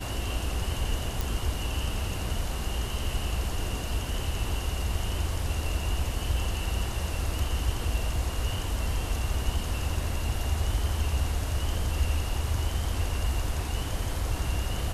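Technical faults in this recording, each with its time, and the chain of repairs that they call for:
1.21 s: pop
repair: de-click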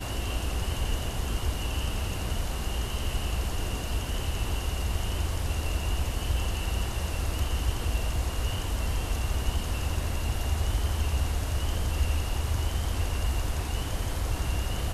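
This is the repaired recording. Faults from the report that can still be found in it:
nothing left

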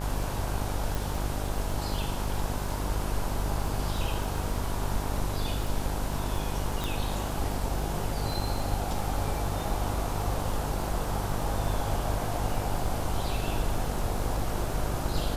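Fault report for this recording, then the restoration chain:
buzz 50 Hz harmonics 34 -33 dBFS
crackle 22 per s -34 dBFS
0.95 s: pop
6.84 s: pop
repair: de-click; de-hum 50 Hz, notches 34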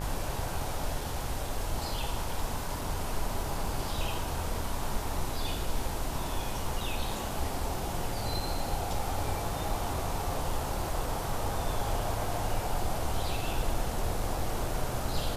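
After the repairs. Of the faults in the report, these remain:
nothing left

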